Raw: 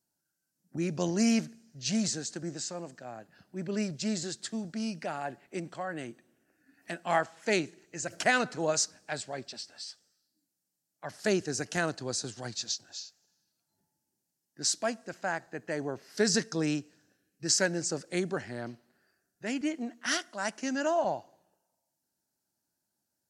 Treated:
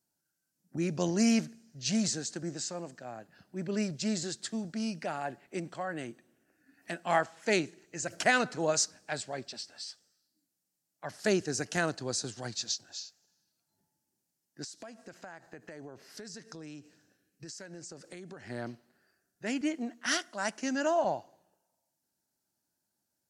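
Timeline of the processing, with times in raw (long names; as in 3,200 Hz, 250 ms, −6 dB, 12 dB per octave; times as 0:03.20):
0:14.64–0:18.50: downward compressor 10 to 1, threshold −42 dBFS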